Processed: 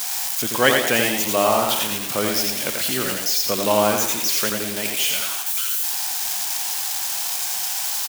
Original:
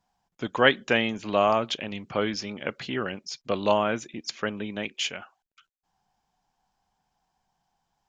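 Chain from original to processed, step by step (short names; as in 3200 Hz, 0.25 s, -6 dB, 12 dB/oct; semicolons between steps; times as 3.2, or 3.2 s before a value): switching spikes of -17 dBFS; frequency-shifting echo 0.11 s, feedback 51%, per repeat +97 Hz, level -9.5 dB; lo-fi delay 86 ms, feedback 35%, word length 7-bit, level -4 dB; gain +2 dB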